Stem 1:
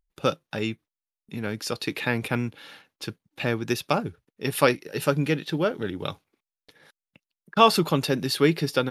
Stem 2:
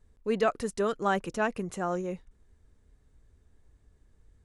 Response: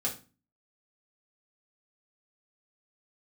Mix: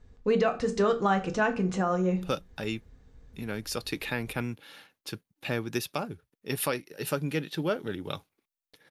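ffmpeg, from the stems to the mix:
-filter_complex "[0:a]highshelf=frequency=9600:gain=8.5,adelay=2050,volume=-4.5dB[link_01];[1:a]lowpass=frequency=6400:width=0.5412,lowpass=frequency=6400:width=1.3066,volume=3dB,asplit=2[link_02][link_03];[link_03]volume=-4dB[link_04];[2:a]atrim=start_sample=2205[link_05];[link_04][link_05]afir=irnorm=-1:irlink=0[link_06];[link_01][link_02][link_06]amix=inputs=3:normalize=0,alimiter=limit=-15.5dB:level=0:latency=1:release=412"

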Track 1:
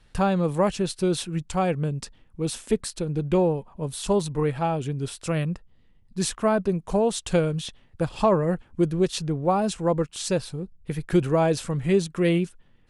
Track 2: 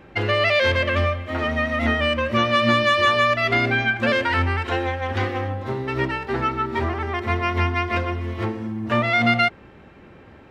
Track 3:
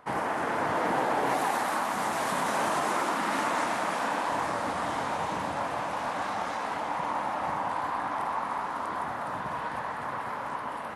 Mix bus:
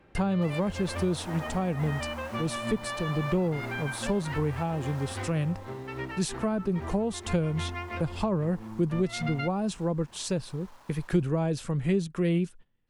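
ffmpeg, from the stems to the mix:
ffmpeg -i stem1.wav -i stem2.wav -i stem3.wav -filter_complex "[0:a]agate=range=-15dB:threshold=-45dB:ratio=16:detection=peak,volume=-1.5dB,asplit=2[link_01][link_02];[1:a]volume=-12dB[link_03];[2:a]lowpass=2300,acrusher=bits=5:mix=0:aa=0.000001,adelay=350,volume=-13dB,afade=type=out:start_time=4.86:duration=0.67:silence=0.354813[link_04];[link_02]apad=whole_len=463490[link_05];[link_03][link_05]sidechaincompress=threshold=-28dB:ratio=8:attack=16:release=176[link_06];[link_01][link_06][link_04]amix=inputs=3:normalize=0,highshelf=frequency=10000:gain=-4,acrossover=split=270[link_07][link_08];[link_08]acompressor=threshold=-32dB:ratio=3[link_09];[link_07][link_09]amix=inputs=2:normalize=0" out.wav

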